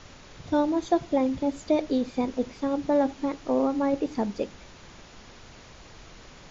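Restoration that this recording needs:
noise reduction from a noise print 23 dB

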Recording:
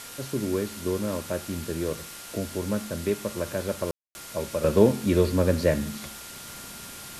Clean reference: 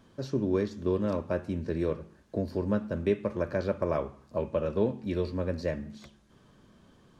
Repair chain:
notch filter 1,400 Hz, Q 30
ambience match 0:03.91–0:04.15
noise reduction from a noise print 18 dB
level 0 dB, from 0:04.64 −9 dB

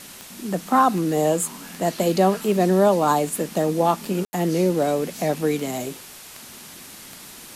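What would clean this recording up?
click removal
ambience match 0:04.25–0:04.33
broadband denoise 25 dB, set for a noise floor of −42 dBFS

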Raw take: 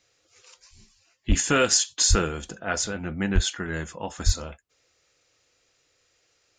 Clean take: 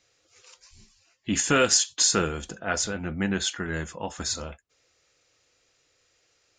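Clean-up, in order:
clipped peaks rebuilt −9.5 dBFS
high-pass at the plosives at 0:01.28/0:02.09/0:03.34/0:04.25

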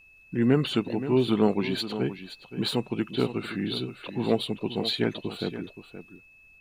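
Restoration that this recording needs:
notch filter 2,600 Hz, Q 30
downward expander −47 dBFS, range −21 dB
echo removal 523 ms −12 dB

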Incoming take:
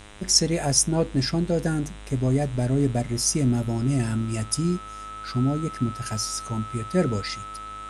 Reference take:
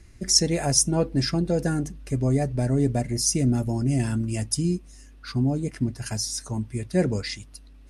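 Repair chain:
hum removal 103.2 Hz, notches 39
notch filter 1,300 Hz, Q 30
broadband denoise 10 dB, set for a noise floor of −38 dBFS

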